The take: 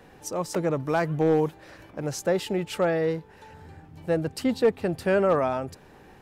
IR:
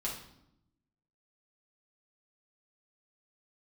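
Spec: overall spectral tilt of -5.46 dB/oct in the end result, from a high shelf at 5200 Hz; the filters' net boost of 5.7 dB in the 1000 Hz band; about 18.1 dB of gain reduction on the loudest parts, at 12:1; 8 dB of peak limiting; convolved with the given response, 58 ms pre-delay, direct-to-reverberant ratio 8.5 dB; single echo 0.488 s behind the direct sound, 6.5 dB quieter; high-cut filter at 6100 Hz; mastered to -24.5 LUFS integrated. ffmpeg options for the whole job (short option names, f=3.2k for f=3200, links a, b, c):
-filter_complex "[0:a]lowpass=6.1k,equalizer=f=1k:t=o:g=8,highshelf=f=5.2k:g=-6,acompressor=threshold=-33dB:ratio=12,alimiter=level_in=5.5dB:limit=-24dB:level=0:latency=1,volume=-5.5dB,aecho=1:1:488:0.473,asplit=2[a][b];[1:a]atrim=start_sample=2205,adelay=58[c];[b][c]afir=irnorm=-1:irlink=0,volume=-11dB[d];[a][d]amix=inputs=2:normalize=0,volume=15dB"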